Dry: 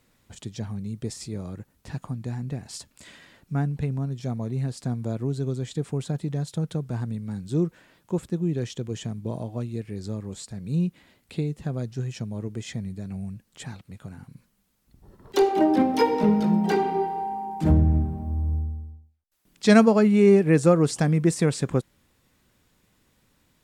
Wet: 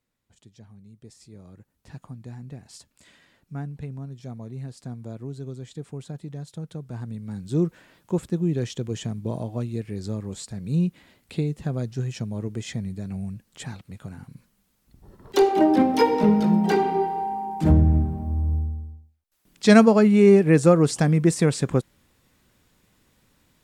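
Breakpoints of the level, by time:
0:00.98 −16 dB
0:01.92 −7.5 dB
0:06.70 −7.5 dB
0:07.66 +2 dB

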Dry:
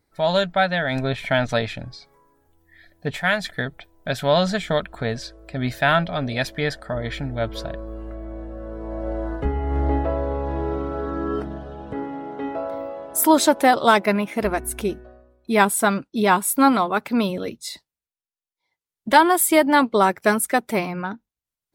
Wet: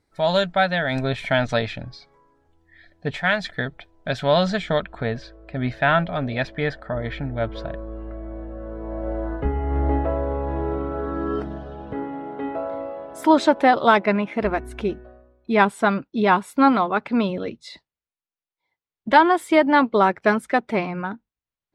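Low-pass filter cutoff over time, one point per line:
0:01.19 9,500 Hz
0:01.78 5,100 Hz
0:04.61 5,100 Hz
0:05.19 2,800 Hz
0:11.03 2,800 Hz
0:11.49 7,700 Hz
0:12.05 3,300 Hz

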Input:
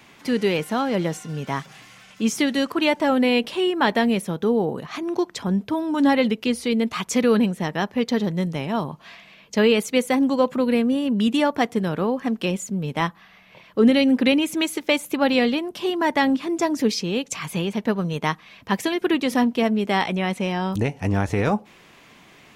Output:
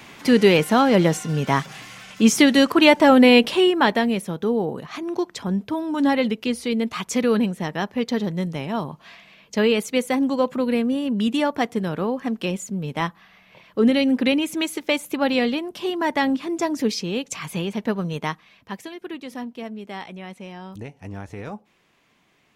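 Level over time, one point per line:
0:03.52 +6.5 dB
0:04.07 −1.5 dB
0:18.16 −1.5 dB
0:18.90 −13 dB

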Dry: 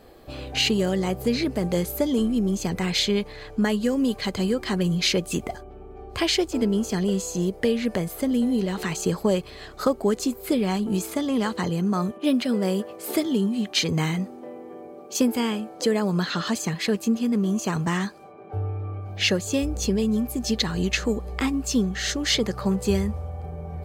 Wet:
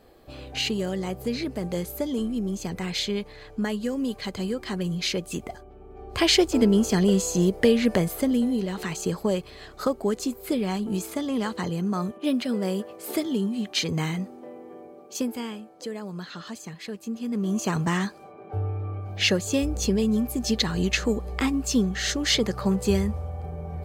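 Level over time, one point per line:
0:05.78 −5 dB
0:06.32 +3.5 dB
0:08.02 +3.5 dB
0:08.61 −3 dB
0:14.77 −3 dB
0:15.86 −12 dB
0:16.99 −12 dB
0:17.61 0 dB

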